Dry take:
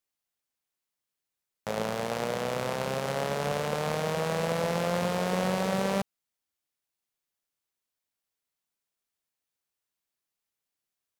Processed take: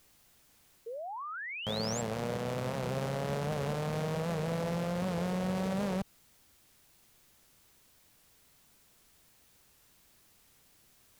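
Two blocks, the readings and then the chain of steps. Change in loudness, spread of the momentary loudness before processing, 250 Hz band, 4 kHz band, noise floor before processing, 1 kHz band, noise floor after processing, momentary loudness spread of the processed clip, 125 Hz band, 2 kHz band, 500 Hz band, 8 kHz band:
-5.0 dB, 4 LU, -1.5 dB, -4.0 dB, under -85 dBFS, -6.5 dB, -65 dBFS, 7 LU, 0.0 dB, -6.0 dB, -5.5 dB, -4.0 dB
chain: low shelf 250 Hz +11.5 dB; reverse; upward compressor, threshold -45 dBFS; reverse; limiter -24 dBFS, peak gain reduction 12.5 dB; painted sound rise, 0.86–2.02, 440–7400 Hz -40 dBFS; record warp 78 rpm, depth 100 cents

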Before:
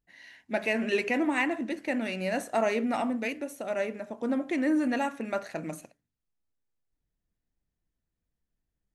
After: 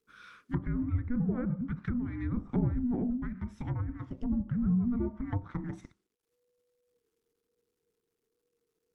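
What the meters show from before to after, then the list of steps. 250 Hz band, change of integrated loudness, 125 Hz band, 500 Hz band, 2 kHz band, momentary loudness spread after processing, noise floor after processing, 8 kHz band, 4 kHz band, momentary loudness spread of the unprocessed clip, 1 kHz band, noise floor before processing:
-1.5 dB, -3.5 dB, +15.0 dB, -14.0 dB, -18.0 dB, 10 LU, -84 dBFS, under -20 dB, under -20 dB, 8 LU, -14.5 dB, -85 dBFS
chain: companded quantiser 8-bit; frequency shift -490 Hz; treble ducked by the level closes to 500 Hz, closed at -26.5 dBFS; gain -1.5 dB

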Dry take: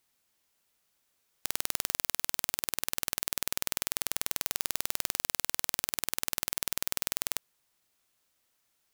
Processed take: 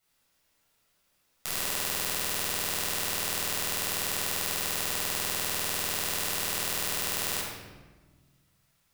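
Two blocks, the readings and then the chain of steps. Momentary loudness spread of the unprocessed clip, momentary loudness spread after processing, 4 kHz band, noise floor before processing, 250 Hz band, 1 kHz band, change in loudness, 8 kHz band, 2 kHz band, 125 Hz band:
1 LU, 2 LU, +5.0 dB, -76 dBFS, +6.5 dB, +6.5 dB, +3.5 dB, +3.0 dB, +6.0 dB, +8.0 dB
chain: shoebox room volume 1000 m³, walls mixed, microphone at 6.8 m; gain -6.5 dB

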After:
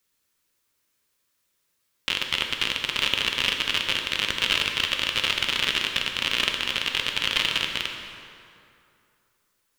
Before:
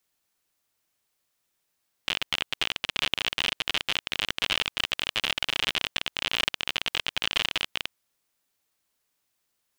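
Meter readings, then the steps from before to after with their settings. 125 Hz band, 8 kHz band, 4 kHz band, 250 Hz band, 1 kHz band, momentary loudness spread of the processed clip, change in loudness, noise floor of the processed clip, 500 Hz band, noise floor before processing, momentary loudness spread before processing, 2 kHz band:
+4.5 dB, +4.0 dB, +4.0 dB, +4.5 dB, +3.0 dB, 6 LU, +4.0 dB, -73 dBFS, +3.0 dB, -77 dBFS, 4 LU, +4.0 dB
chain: bell 730 Hz -11.5 dB 0.3 oct; plate-style reverb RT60 2.6 s, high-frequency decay 0.65×, DRR 2.5 dB; gain +2.5 dB

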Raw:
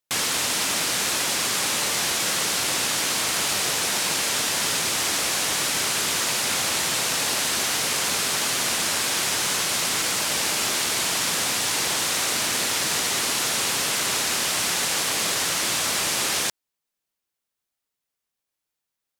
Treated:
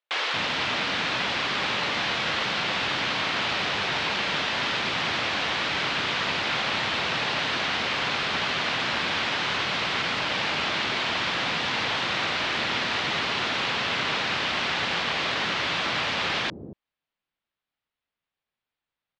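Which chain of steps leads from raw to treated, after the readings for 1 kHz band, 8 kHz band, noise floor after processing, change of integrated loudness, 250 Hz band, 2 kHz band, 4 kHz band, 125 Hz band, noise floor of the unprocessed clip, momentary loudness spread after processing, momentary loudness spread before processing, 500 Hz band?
+1.5 dB, -21.0 dB, under -85 dBFS, -3.5 dB, 0.0 dB, +1.5 dB, -2.5 dB, +1.5 dB, -84 dBFS, 0 LU, 0 LU, -0.5 dB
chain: LPF 3700 Hz 24 dB/oct; bands offset in time highs, lows 0.23 s, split 390 Hz; gain +1.5 dB

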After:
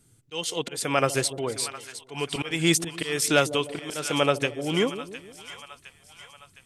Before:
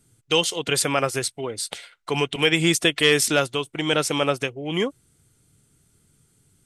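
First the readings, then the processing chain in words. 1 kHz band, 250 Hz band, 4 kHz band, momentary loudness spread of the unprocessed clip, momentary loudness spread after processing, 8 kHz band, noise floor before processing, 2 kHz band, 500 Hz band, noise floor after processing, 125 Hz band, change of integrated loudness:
-1.5 dB, -2.5 dB, -6.0 dB, 11 LU, 18 LU, -2.5 dB, -64 dBFS, -5.0 dB, -3.0 dB, -59 dBFS, -2.5 dB, -4.0 dB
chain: auto swell 0.312 s; split-band echo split 770 Hz, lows 0.152 s, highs 0.711 s, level -13 dB

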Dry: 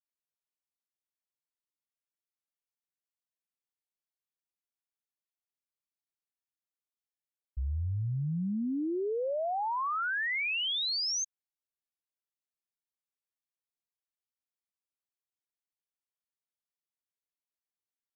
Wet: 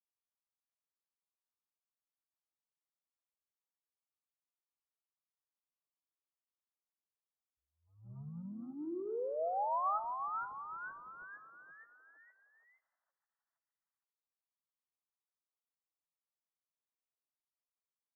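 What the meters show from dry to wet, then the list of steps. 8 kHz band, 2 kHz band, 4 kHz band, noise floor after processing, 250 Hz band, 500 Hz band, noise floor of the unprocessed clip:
n/a, -17.0 dB, under -40 dB, under -85 dBFS, -11.5 dB, -5.5 dB, under -85 dBFS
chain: HPF 970 Hz 6 dB/oct; short-mantissa float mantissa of 2-bit; brick-wall FIR low-pass 1300 Hz; on a send: frequency-shifting echo 0.466 s, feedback 49%, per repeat +130 Hz, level -5 dB; on the sum: shoebox room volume 3400 m³, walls furnished, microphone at 0.65 m; attack slew limiter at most 110 dB/s

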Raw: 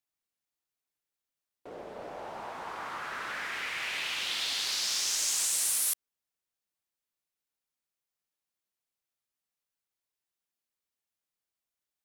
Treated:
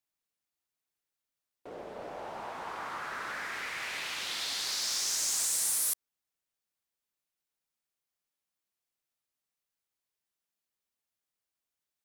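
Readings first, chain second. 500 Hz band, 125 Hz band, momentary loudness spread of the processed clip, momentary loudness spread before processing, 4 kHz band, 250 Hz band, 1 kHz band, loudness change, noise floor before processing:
0.0 dB, n/a, 15 LU, 17 LU, -3.0 dB, 0.0 dB, 0.0 dB, -2.0 dB, under -85 dBFS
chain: wavefolder -23 dBFS; dynamic EQ 2900 Hz, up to -6 dB, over -47 dBFS, Q 1.8

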